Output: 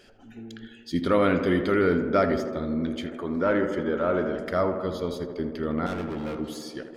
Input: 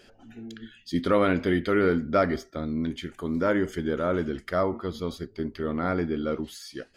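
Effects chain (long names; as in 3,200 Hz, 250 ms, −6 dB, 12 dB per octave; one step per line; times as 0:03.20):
0:05.86–0:06.36: gain into a clipping stage and back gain 30.5 dB
tape delay 80 ms, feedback 89%, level −8 dB, low-pass 1,900 Hz
0:03.06–0:04.39: mid-hump overdrive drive 11 dB, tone 1,300 Hz, clips at −11 dBFS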